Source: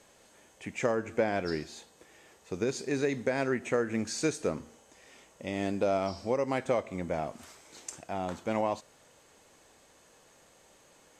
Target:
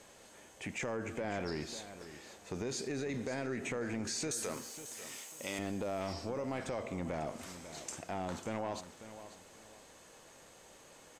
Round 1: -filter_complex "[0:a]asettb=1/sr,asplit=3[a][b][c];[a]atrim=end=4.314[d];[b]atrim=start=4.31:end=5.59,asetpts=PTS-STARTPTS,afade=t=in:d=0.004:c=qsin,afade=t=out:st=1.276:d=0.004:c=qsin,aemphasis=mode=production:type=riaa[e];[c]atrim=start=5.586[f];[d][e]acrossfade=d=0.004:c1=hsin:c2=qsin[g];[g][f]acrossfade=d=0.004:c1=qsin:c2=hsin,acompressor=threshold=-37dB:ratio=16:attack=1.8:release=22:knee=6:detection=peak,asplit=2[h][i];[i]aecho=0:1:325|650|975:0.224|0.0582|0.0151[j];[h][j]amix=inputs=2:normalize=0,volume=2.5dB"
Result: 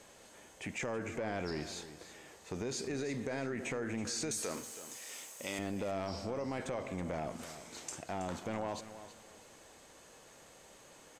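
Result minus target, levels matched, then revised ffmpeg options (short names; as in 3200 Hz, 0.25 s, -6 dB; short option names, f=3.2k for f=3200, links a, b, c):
echo 0.22 s early
-filter_complex "[0:a]asettb=1/sr,asplit=3[a][b][c];[a]atrim=end=4.314[d];[b]atrim=start=4.31:end=5.59,asetpts=PTS-STARTPTS,afade=t=in:d=0.004:c=qsin,afade=t=out:st=1.276:d=0.004:c=qsin,aemphasis=mode=production:type=riaa[e];[c]atrim=start=5.586[f];[d][e]acrossfade=d=0.004:c1=hsin:c2=qsin[g];[g][f]acrossfade=d=0.004:c1=qsin:c2=hsin,acompressor=threshold=-37dB:ratio=16:attack=1.8:release=22:knee=6:detection=peak,asplit=2[h][i];[i]aecho=0:1:545|1090|1635:0.224|0.0582|0.0151[j];[h][j]amix=inputs=2:normalize=0,volume=2.5dB"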